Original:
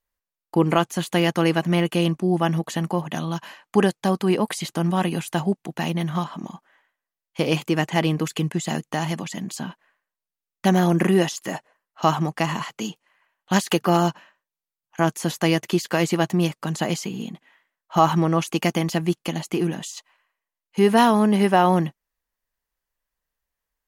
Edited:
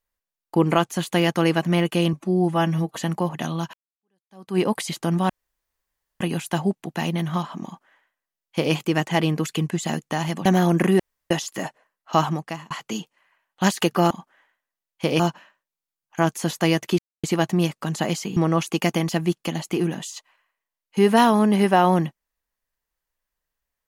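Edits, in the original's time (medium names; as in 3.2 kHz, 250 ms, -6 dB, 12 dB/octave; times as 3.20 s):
2.13–2.68 s: stretch 1.5×
3.46–4.31 s: fade in exponential
5.02 s: insert room tone 0.91 s
6.46–7.55 s: copy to 14.00 s
9.27–10.66 s: delete
11.20 s: insert room tone 0.31 s
12.13–12.60 s: fade out
15.79–16.04 s: mute
17.17–18.17 s: delete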